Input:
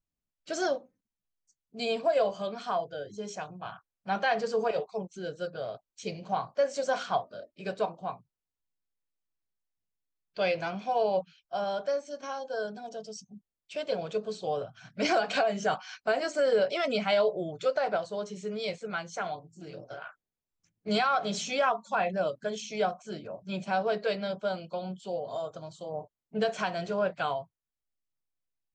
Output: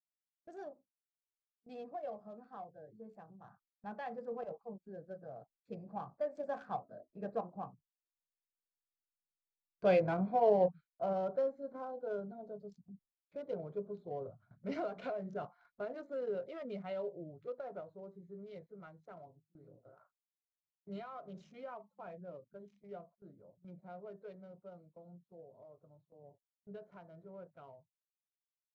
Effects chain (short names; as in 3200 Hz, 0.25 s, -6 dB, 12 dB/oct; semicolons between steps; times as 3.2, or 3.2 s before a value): Wiener smoothing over 15 samples; Doppler pass-by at 9.86, 20 m/s, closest 23 m; gate with hold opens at -56 dBFS; LPF 1500 Hz 6 dB/oct; low shelf 500 Hz +7.5 dB; gain -2 dB